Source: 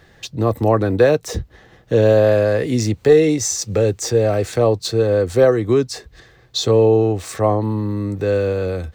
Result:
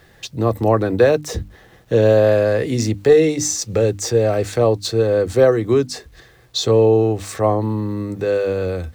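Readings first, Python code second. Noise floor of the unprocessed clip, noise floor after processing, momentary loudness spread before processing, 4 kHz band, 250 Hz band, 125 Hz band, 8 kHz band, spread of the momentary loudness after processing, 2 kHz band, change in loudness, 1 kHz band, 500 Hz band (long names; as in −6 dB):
−51 dBFS, −50 dBFS, 9 LU, 0.0 dB, −0.5 dB, −1.0 dB, 0.0 dB, 10 LU, 0.0 dB, 0.0 dB, 0.0 dB, 0.0 dB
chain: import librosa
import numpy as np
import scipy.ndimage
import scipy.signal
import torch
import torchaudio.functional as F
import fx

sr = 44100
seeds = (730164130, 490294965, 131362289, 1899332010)

y = fx.quant_dither(x, sr, seeds[0], bits=10, dither='none')
y = fx.hum_notches(y, sr, base_hz=50, count=6)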